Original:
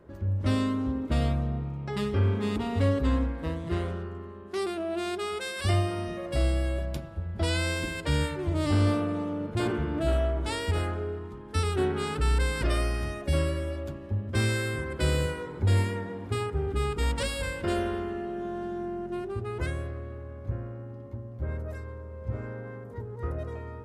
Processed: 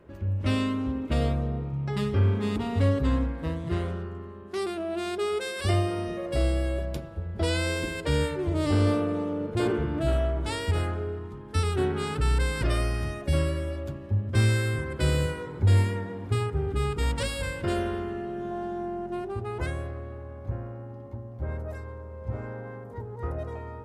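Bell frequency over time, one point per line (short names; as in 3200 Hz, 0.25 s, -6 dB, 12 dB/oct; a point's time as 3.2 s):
bell +7 dB 0.58 oct
2600 Hz
from 1.13 s 450 Hz
from 1.72 s 130 Hz
from 5.18 s 440 Hz
from 9.85 s 120 Hz
from 18.51 s 810 Hz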